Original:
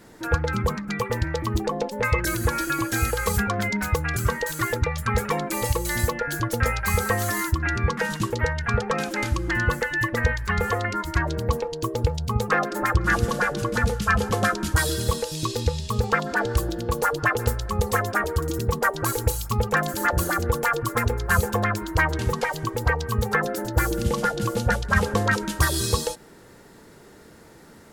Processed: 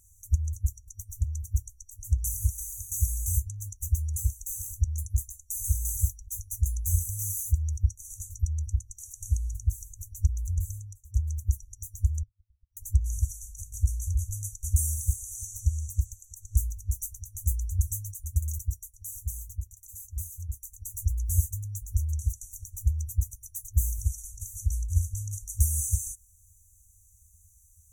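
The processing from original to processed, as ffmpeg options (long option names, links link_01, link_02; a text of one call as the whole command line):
ffmpeg -i in.wav -filter_complex "[0:a]asettb=1/sr,asplit=3[link_01][link_02][link_03];[link_01]atrim=end=12.234[link_04];[link_02]atrim=start=12.23:end=12.77,asetpts=PTS-STARTPTS,afade=type=in:duration=0.004:curve=qsin,afade=type=out:start_time=0.536:duration=0.004:curve=qsin,lowpass=frequency=3100:width_type=q:width=0.5098,lowpass=frequency=3100:width_type=q:width=0.6013,lowpass=frequency=3100:width_type=q:width=0.9,lowpass=frequency=3100:width_type=q:width=2.563,afreqshift=-3600[link_05];[link_03]atrim=start=12.766[link_06];[link_04][link_05]acrossfade=duration=0.004:curve1=hsin:curve2=qsin[link_07];[link_07][link_06]acrossfade=duration=0.004:curve1=qsin:curve2=hsin,asplit=4[link_08][link_09][link_10][link_11];[link_08]atrim=end=11.14,asetpts=PTS-STARTPTS,afade=type=out:start_time=10.73:duration=0.41[link_12];[link_09]atrim=start=11.14:end=18.9,asetpts=PTS-STARTPTS,afade=type=in:duration=0.004:curve=hsin,afade=type=out:start_time=7.37:duration=0.39:silence=0.375837[link_13];[link_10]atrim=start=18.9:end=20.6,asetpts=PTS-STARTPTS,volume=-8.5dB[link_14];[link_11]atrim=start=20.6,asetpts=PTS-STARTPTS,afade=type=in:duration=0.39:silence=0.375837[link_15];[link_12][link_13][link_14][link_15]concat=n=4:v=0:a=1,afftfilt=real='re*(1-between(b*sr/4096,100,5800))':imag='im*(1-between(b*sr/4096,100,5800))':win_size=4096:overlap=0.75" out.wav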